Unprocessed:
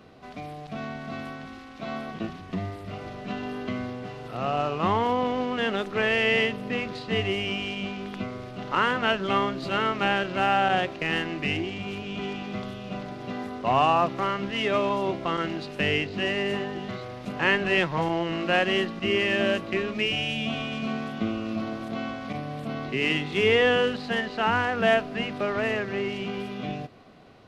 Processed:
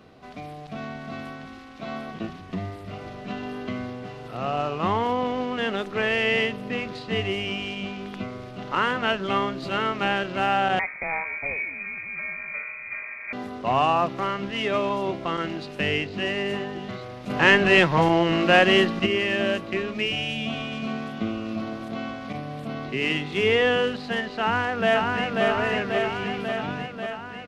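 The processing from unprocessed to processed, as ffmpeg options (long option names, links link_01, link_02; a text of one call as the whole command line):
ffmpeg -i in.wav -filter_complex "[0:a]asettb=1/sr,asplit=3[link_01][link_02][link_03];[link_01]atrim=end=10.794[link_04];[link_02]atrim=start=10.79:end=13.33,asetpts=PTS-STARTPTS,afade=type=in:duration=0.004:curve=qsin,afade=type=out:start_time=2.536:duration=0.004:curve=qsin,lowpass=frequency=2200:width_type=q:width=0.5098,lowpass=frequency=2200:width_type=q:width=0.6013,lowpass=frequency=2200:width_type=q:width=0.9,lowpass=frequency=2200:width_type=q:width=2.563,afreqshift=-2600[link_05];[link_03]atrim=start=13.326[link_06];[link_04][link_05]acrossfade=duration=0.004:curve1=hsin:curve2=qsin[link_07];[link_07][link_06]acrossfade=duration=0.004:curve1=qsin:curve2=hsin,asplit=3[link_08][link_09][link_10];[link_08]afade=type=out:start_time=17.29:duration=0.02[link_11];[link_09]acontrast=81,afade=type=in:start_time=17.29:duration=0.02,afade=type=out:start_time=19.05:duration=0.02[link_12];[link_10]afade=type=in:start_time=19.05:duration=0.02[link_13];[link_11][link_12][link_13]amix=inputs=3:normalize=0,asplit=2[link_14][link_15];[link_15]afade=type=in:start_time=24.4:duration=0.01,afade=type=out:start_time=25.44:duration=0.01,aecho=0:1:540|1080|1620|2160|2700|3240|3780|4320|4860|5400|5940|6480:0.749894|0.524926|0.367448|0.257214|0.18005|0.126035|0.0882243|0.061757|0.0432299|0.0302609|0.0211827|0.0148279[link_16];[link_14][link_16]amix=inputs=2:normalize=0" out.wav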